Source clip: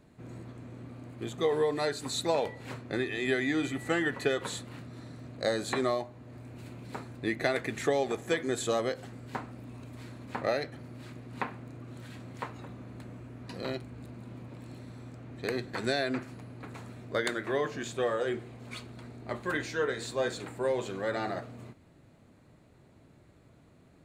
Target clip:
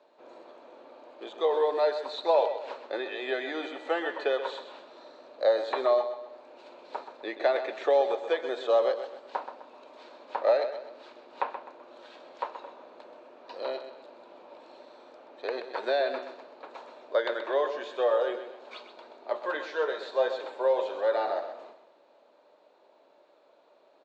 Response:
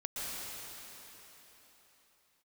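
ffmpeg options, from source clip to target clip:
-filter_complex "[0:a]acrossover=split=3600[link_01][link_02];[link_02]acompressor=threshold=-51dB:ratio=4:attack=1:release=60[link_03];[link_01][link_03]amix=inputs=2:normalize=0,highpass=frequency=400:width=0.5412,highpass=frequency=400:width=1.3066,equalizer=frequency=580:width_type=q:width=4:gain=9,equalizer=frequency=910:width_type=q:width=4:gain=8,equalizer=frequency=2000:width_type=q:width=4:gain=-7,equalizer=frequency=3700:width_type=q:width=4:gain=3,lowpass=frequency=5300:width=0.5412,lowpass=frequency=5300:width=1.3066,aecho=1:1:128|256|384|512:0.316|0.12|0.0457|0.0174"

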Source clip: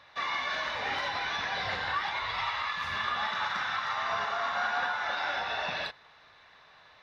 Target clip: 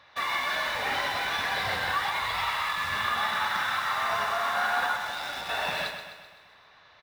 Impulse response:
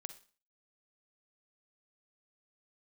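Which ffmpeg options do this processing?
-filter_complex "[0:a]asettb=1/sr,asplit=3[link_01][link_02][link_03];[link_01]atrim=end=4.954[link_04];[link_02]atrim=start=4.95:end=5.49,asetpts=PTS-STARTPTS,afade=type=in:duration=0.004:curve=qsin,afade=type=out:start_time=0.536:duration=0.004:curve=qsin,acrossover=split=300|3000[link_05][link_06][link_07];[link_06]acompressor=threshold=-39dB:ratio=6[link_08];[link_05][link_08][link_07]amix=inputs=3:normalize=0[link_09];[link_03]atrim=start=5.486[link_10];[link_04][link_09]acrossfade=duration=0.004:curve1=hsin:curve2=qsin[link_11];[link_11][link_10]acrossfade=duration=0.004:curve1=qsin:curve2=hsin,asplit=2[link_12][link_13];[link_13]acrusher=bits=5:mix=0:aa=0.000001,volume=-8.5dB[link_14];[link_12][link_14]amix=inputs=2:normalize=0,aecho=1:1:128|256|384|512|640|768|896:0.376|0.207|0.114|0.0625|0.0344|0.0189|0.0104"

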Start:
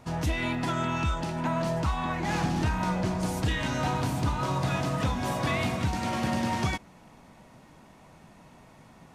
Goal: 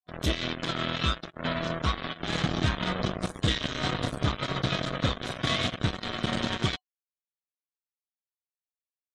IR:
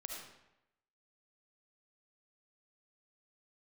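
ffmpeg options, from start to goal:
-af "acrusher=bits=3:mix=0:aa=0.5,afftdn=noise_reduction=29:noise_floor=-44,superequalizer=9b=0.447:13b=2.51"

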